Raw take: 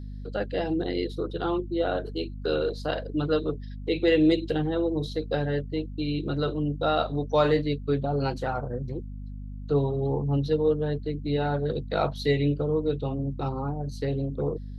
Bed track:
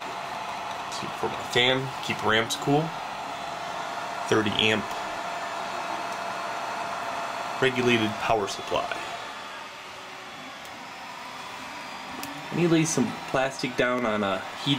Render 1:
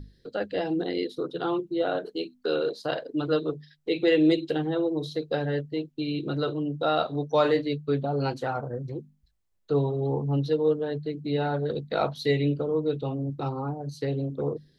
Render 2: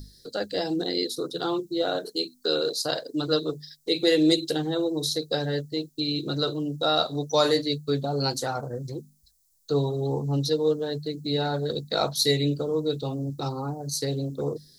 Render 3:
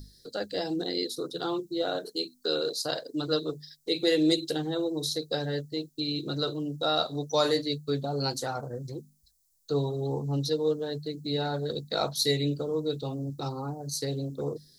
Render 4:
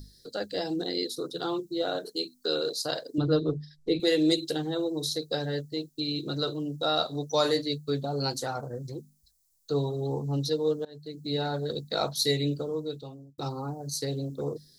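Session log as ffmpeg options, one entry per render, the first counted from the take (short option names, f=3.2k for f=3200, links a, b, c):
-af "bandreject=f=50:t=h:w=6,bandreject=f=100:t=h:w=6,bandreject=f=150:t=h:w=6,bandreject=f=200:t=h:w=6,bandreject=f=250:t=h:w=6"
-af "aexciter=amount=11.4:drive=4.3:freq=4.2k"
-af "volume=-3.5dB"
-filter_complex "[0:a]asettb=1/sr,asplit=3[a][b][c];[a]atrim=end=3.184[d];[b]atrim=start=3.18:end=4,asetpts=PTS-STARTPTS,afade=t=in:d=0.004:c=qsin,afade=t=out:st=0.816:d=0.004:c=qsin,aemphasis=mode=reproduction:type=riaa[e];[c]atrim=start=3.996[f];[d][e]acrossfade=d=0.004:c1=hsin:c2=qsin[g];[g][f]acrossfade=d=0.004:c1=qsin:c2=hsin,asplit=3[h][i][j];[h]atrim=end=10.85,asetpts=PTS-STARTPTS,afade=t=out:st=10.846:d=0.004:c=hsin:silence=0.0749894[k];[i]atrim=start=10.85:end=13.38,asetpts=PTS-STARTPTS,afade=t=in:d=0.48:silence=0.0749894,afade=t=out:st=1.71:d=0.82[l];[j]atrim=start=13.38,asetpts=PTS-STARTPTS,afade=t=in:d=0.004:c=hsin[m];[k][l][m]concat=n=3:v=0:a=1"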